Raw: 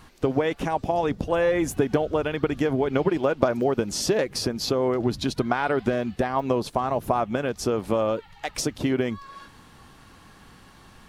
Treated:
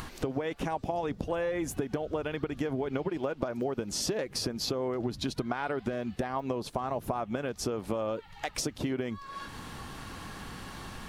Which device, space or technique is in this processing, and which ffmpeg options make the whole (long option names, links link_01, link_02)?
upward and downward compression: -af "acompressor=mode=upward:threshold=-28dB:ratio=2.5,acompressor=threshold=-25dB:ratio=6,volume=-3dB"